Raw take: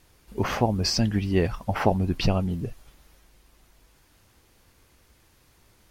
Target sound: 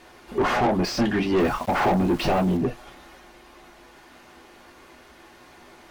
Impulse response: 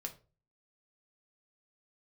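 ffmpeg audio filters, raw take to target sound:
-filter_complex "[1:a]atrim=start_sample=2205,atrim=end_sample=3087,asetrate=70560,aresample=44100[link_01];[0:a][link_01]afir=irnorm=-1:irlink=0,asplit=2[link_02][link_03];[link_03]highpass=frequency=720:poles=1,volume=33dB,asoftclip=type=tanh:threshold=-11.5dB[link_04];[link_02][link_04]amix=inputs=2:normalize=0,lowpass=frequency=1100:poles=1,volume=-6dB,asettb=1/sr,asplit=3[link_05][link_06][link_07];[link_05]atrim=end=1.404[link_08];[link_06]atrim=start=1.4:end=2.57,asetpts=PTS-STARTPTS,afade=type=in:duration=0.004:curve=qsin,afade=type=out:start_time=1.166:duration=0.004:curve=qsin,aeval=exprs='val(0)*gte(abs(val(0)),0.015)':channel_layout=same[link_09];[link_07]atrim=start=2.566[link_10];[link_08][link_09]acrossfade=duration=0.004:curve1=hsin:curve2=qsin[link_11];[link_11][link_10]acrossfade=duration=0.004:curve1=qsin:curve2=hsin"

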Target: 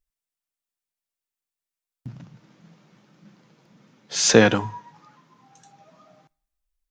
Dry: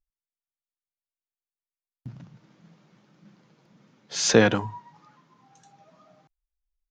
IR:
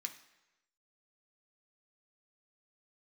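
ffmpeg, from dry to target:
-filter_complex "[0:a]asplit=2[link_01][link_02];[1:a]atrim=start_sample=2205,highshelf=frequency=4000:gain=9[link_03];[link_02][link_03]afir=irnorm=-1:irlink=0,volume=-13dB[link_04];[link_01][link_04]amix=inputs=2:normalize=0,volume=2.5dB"

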